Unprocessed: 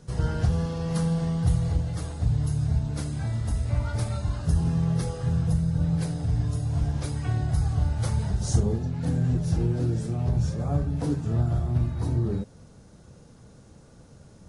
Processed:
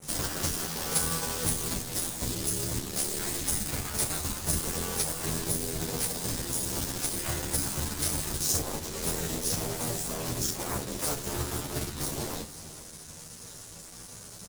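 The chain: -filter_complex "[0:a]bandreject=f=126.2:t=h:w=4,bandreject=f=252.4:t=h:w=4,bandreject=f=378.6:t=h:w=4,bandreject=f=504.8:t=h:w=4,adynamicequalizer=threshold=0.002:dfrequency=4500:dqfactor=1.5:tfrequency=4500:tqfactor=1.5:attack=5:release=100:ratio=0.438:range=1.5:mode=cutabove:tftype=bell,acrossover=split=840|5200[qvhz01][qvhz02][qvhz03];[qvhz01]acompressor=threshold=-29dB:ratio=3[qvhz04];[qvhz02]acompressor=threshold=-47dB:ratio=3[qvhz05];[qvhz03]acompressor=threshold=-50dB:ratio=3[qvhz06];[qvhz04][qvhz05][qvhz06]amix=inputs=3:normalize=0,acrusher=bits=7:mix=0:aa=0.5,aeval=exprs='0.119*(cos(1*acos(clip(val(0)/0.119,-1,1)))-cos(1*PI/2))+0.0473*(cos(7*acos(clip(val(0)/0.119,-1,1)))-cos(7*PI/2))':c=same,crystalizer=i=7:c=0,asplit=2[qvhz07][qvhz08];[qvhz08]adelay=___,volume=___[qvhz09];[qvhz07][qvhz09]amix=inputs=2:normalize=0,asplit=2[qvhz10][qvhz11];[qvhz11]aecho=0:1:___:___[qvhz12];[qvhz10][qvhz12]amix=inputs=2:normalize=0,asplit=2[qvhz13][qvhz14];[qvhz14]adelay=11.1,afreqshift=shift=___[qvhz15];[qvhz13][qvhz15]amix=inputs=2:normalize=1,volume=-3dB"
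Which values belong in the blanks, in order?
25, -12dB, 477, 0.141, 0.25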